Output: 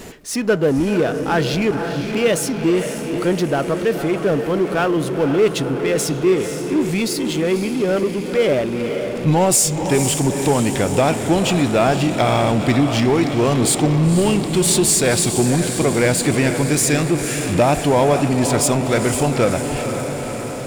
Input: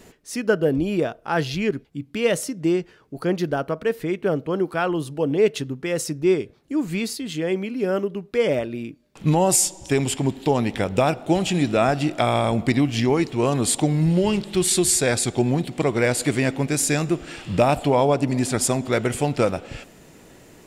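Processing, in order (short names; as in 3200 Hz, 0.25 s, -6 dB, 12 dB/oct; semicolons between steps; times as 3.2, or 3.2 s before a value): diffused feedback echo 0.5 s, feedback 60%, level -9.5 dB; power-law curve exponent 0.7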